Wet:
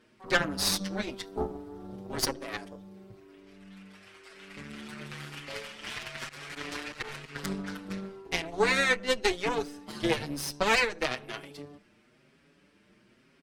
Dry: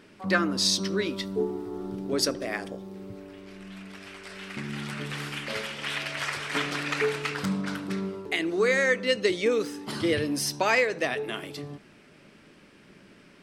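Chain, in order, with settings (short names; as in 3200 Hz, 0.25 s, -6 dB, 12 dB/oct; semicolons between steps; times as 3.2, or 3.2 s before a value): added harmonics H 4 -10 dB, 5 -32 dB, 7 -21 dB, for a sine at -8.5 dBFS; 6.24–7.35 auto swell 0.118 s; endless flanger 6.1 ms +1 Hz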